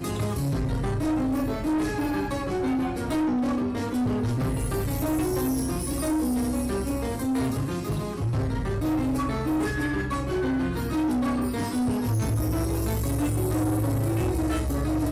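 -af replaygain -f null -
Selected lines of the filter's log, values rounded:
track_gain = +9.3 dB
track_peak = 0.057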